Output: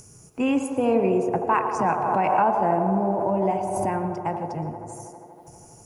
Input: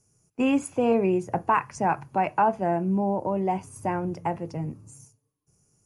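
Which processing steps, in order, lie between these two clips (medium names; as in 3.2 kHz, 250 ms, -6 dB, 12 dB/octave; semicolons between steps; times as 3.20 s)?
upward compressor, threshold -34 dBFS; feedback echo behind a band-pass 80 ms, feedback 85%, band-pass 620 Hz, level -7 dB; reverberation RT60 0.55 s, pre-delay 110 ms, DRR 14.5 dB; 1.79–3.97 s: swell ahead of each attack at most 27 dB/s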